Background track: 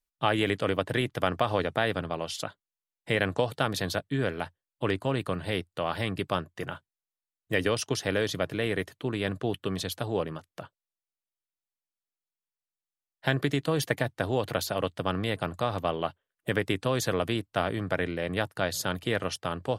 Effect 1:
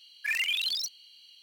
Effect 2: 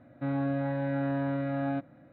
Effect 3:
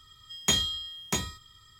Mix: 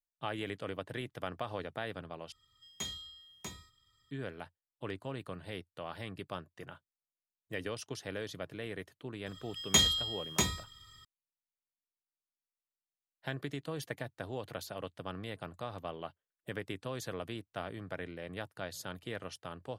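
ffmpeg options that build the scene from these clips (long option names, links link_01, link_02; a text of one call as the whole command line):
ffmpeg -i bed.wav -i cue0.wav -i cue1.wav -i cue2.wav -filter_complex "[3:a]asplit=2[link_01][link_02];[0:a]volume=-12.5dB,asplit=2[link_03][link_04];[link_03]atrim=end=2.324[link_05];[link_01]atrim=end=1.79,asetpts=PTS-STARTPTS,volume=-15.5dB[link_06];[link_04]atrim=start=4.106[link_07];[link_02]atrim=end=1.79,asetpts=PTS-STARTPTS,volume=-0.5dB,afade=type=in:duration=0.004:curve=hsin,afade=type=out:start_time=1.786:duration=0.004:curve=hsin,adelay=9260[link_08];[link_05][link_06]acrossfade=duration=0.004:curve1=hsin:curve2=hsin[link_09];[link_09][link_07]acrossfade=duration=0.004:curve1=hsin:curve2=hsin[link_10];[link_10][link_08]amix=inputs=2:normalize=0" out.wav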